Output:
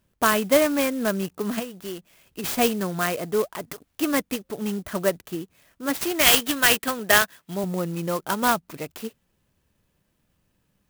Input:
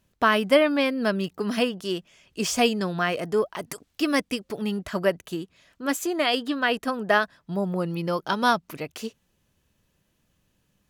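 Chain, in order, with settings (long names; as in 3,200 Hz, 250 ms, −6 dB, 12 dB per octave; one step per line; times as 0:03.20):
0:01.59–0:02.44: downward compressor 6 to 1, threshold −30 dBFS, peak gain reduction 11.5 dB
0:06.01–0:07.64: meter weighting curve D
converter with an unsteady clock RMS 0.054 ms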